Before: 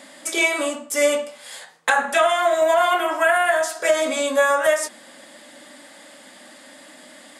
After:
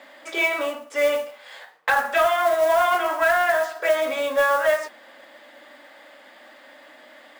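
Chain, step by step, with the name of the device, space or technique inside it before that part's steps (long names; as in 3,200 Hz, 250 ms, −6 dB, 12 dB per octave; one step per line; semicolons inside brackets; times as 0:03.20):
carbon microphone (band-pass filter 420–2,800 Hz; soft clipping −9 dBFS, distortion −23 dB; noise that follows the level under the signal 21 dB)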